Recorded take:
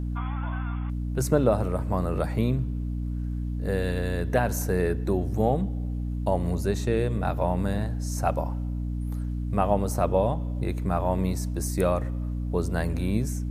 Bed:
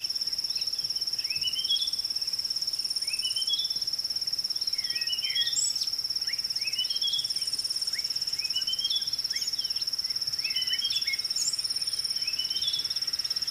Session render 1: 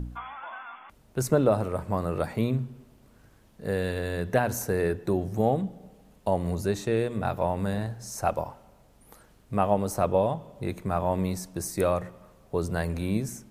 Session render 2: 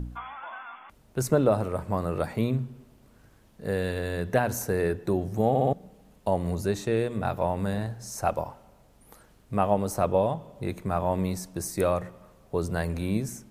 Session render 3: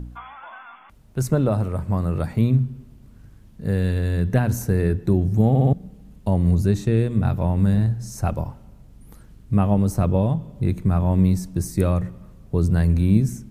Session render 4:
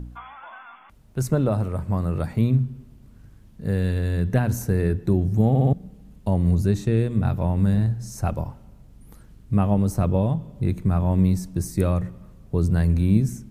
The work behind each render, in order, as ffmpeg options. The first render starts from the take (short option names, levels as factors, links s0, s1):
-af "bandreject=f=60:t=h:w=4,bandreject=f=120:t=h:w=4,bandreject=f=180:t=h:w=4,bandreject=f=240:t=h:w=4,bandreject=f=300:t=h:w=4"
-filter_complex "[0:a]asplit=5[s0][s1][s2][s3][s4];[s0]atrim=end=5.552[s5];[s1]atrim=start=5.488:end=5.552[s6];[s2]atrim=start=5.488:end=5.552[s7];[s3]atrim=start=5.488:end=5.552[s8];[s4]atrim=start=5.728[s9];[s5][s6]acrossfade=d=0.004:c1=hsin:c2=hsin[s10];[s10][s7]acrossfade=d=0.004:c1=hsin:c2=hsin[s11];[s11][s8]acrossfade=d=0.004:c1=hsin:c2=hsin[s12];[s12][s9]acrossfade=d=0.004:c1=hsin:c2=hsin"
-af "asubboost=boost=5.5:cutoff=250"
-af "volume=0.841"